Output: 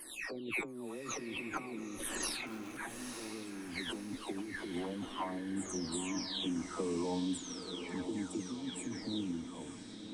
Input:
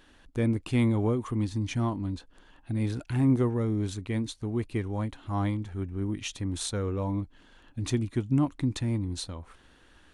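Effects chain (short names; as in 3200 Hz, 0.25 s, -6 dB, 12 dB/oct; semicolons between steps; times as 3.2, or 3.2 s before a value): spectral delay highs early, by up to 0.669 s; Doppler pass-by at 2.57, 29 m/s, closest 6.6 m; in parallel at -4 dB: wrapped overs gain 33.5 dB; on the sum: limiter -36.5 dBFS, peak gain reduction 14 dB; negative-ratio compressor -55 dBFS, ratio -1; resonant low shelf 160 Hz -13 dB, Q 1.5; on a send: diffused feedback echo 0.92 s, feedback 48%, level -8 dB; on the sum: gain +14.5 dB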